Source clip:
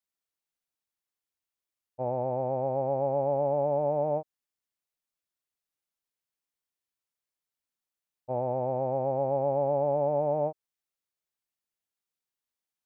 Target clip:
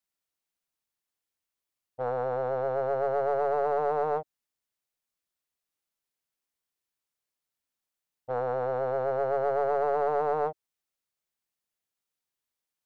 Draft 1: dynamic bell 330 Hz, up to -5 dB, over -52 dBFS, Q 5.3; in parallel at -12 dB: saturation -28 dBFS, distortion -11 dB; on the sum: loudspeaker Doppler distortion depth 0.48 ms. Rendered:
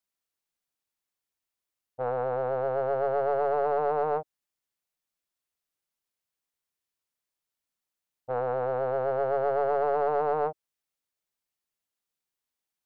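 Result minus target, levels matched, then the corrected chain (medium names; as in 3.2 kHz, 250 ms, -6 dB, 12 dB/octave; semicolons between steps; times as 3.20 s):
saturation: distortion -6 dB
dynamic bell 330 Hz, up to -5 dB, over -52 dBFS, Q 5.3; in parallel at -12 dB: saturation -38 dBFS, distortion -5 dB; on the sum: loudspeaker Doppler distortion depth 0.48 ms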